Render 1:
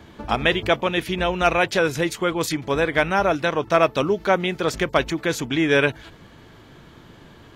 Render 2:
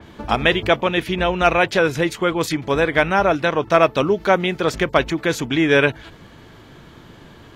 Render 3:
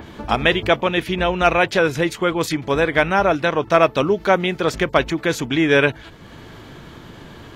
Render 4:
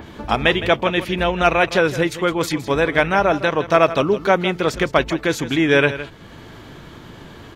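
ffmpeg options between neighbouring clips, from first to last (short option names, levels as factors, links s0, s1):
-af "adynamicequalizer=threshold=0.0126:dfrequency=4400:dqfactor=0.7:tfrequency=4400:tqfactor=0.7:attack=5:release=100:ratio=0.375:range=3:mode=cutabove:tftype=highshelf,volume=1.41"
-af "acompressor=mode=upward:threshold=0.0251:ratio=2.5"
-af "aecho=1:1:162:0.211"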